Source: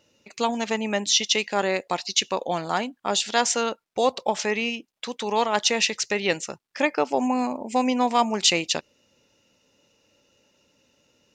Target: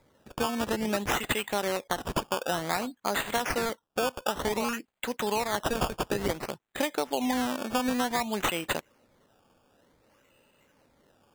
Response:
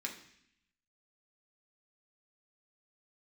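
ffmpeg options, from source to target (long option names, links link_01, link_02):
-af "acompressor=threshold=-24dB:ratio=10,acrusher=samples=15:mix=1:aa=0.000001:lfo=1:lforange=15:lforate=0.55"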